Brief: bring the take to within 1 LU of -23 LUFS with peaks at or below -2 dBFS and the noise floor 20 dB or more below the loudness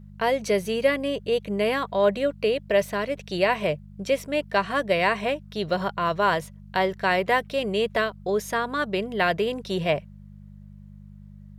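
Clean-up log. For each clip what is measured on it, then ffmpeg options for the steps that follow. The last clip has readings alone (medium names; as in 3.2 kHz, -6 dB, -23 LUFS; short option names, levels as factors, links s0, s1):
hum 50 Hz; highest harmonic 200 Hz; hum level -41 dBFS; loudness -25.0 LUFS; peak level -7.5 dBFS; loudness target -23.0 LUFS
-> -af "bandreject=f=50:t=h:w=4,bandreject=f=100:t=h:w=4,bandreject=f=150:t=h:w=4,bandreject=f=200:t=h:w=4"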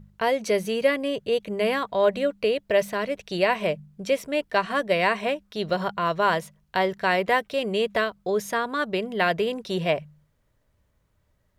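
hum not found; loudness -25.0 LUFS; peak level -7.5 dBFS; loudness target -23.0 LUFS
-> -af "volume=1.26"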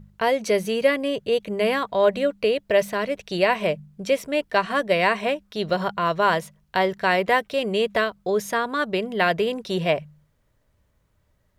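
loudness -23.0 LUFS; peak level -5.5 dBFS; noise floor -67 dBFS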